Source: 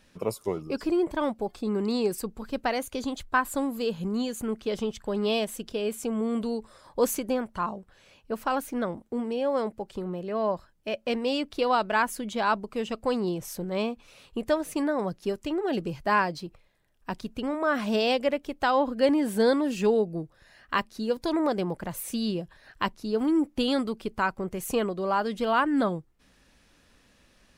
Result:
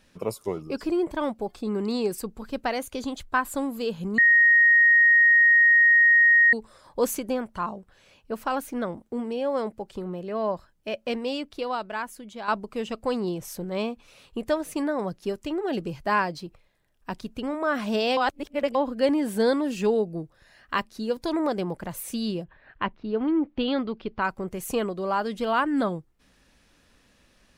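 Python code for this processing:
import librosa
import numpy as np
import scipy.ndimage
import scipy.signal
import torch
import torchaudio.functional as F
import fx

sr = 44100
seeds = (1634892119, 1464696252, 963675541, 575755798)

y = fx.lowpass(x, sr, hz=fx.line((22.43, 2600.0), (24.23, 4300.0)), slope=24, at=(22.43, 24.23), fade=0.02)
y = fx.edit(y, sr, fx.bleep(start_s=4.18, length_s=2.35, hz=1870.0, db=-13.5),
    fx.fade_out_to(start_s=11.04, length_s=1.44, curve='qua', floor_db=-9.0),
    fx.reverse_span(start_s=18.17, length_s=0.58), tone=tone)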